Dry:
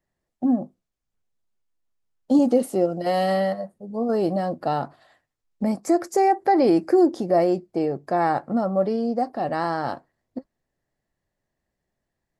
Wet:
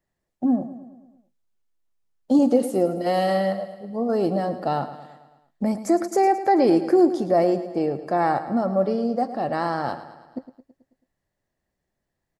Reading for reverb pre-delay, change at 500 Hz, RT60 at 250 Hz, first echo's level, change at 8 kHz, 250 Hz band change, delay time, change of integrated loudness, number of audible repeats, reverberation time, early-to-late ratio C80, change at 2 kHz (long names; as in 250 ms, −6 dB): no reverb audible, +0.5 dB, no reverb audible, −13.0 dB, +0.5 dB, +0.5 dB, 109 ms, +0.5 dB, 5, no reverb audible, no reverb audible, 0.0 dB